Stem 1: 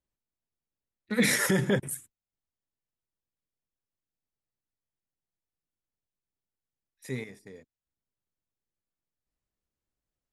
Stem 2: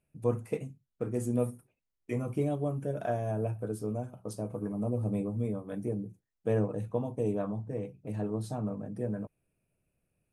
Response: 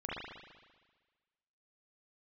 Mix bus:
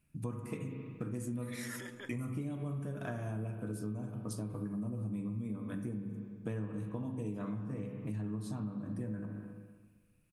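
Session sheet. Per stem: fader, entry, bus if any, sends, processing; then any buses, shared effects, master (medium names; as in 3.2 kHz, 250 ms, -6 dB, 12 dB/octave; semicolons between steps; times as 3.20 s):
-4.5 dB, 0.30 s, no send, steep high-pass 300 Hz; auto duck -11 dB, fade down 1.85 s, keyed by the second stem
+3.0 dB, 0.00 s, send -5.5 dB, vibrato 8.8 Hz 7.9 cents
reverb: on, RT60 1.4 s, pre-delay 38 ms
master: high-order bell 560 Hz -10.5 dB 1.3 oct; compression 6:1, threshold -36 dBFS, peak gain reduction 14.5 dB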